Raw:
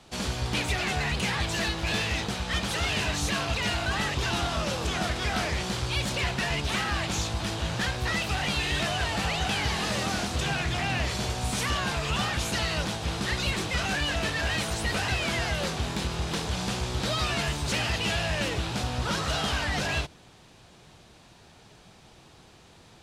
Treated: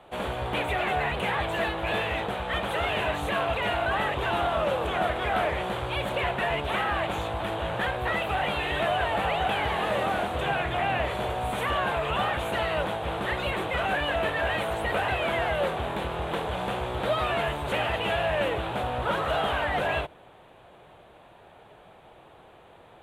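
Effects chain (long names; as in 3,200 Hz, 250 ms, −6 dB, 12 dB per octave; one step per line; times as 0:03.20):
drawn EQ curve 230 Hz 0 dB, 580 Hz +13 dB, 3,500 Hz +1 dB, 5,200 Hz −22 dB, 8,100 Hz −8 dB, 13,000 Hz +1 dB
level −4.5 dB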